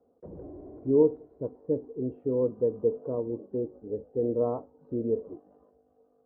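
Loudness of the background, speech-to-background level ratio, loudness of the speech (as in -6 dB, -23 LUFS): -47.5 LUFS, 17.5 dB, -30.0 LUFS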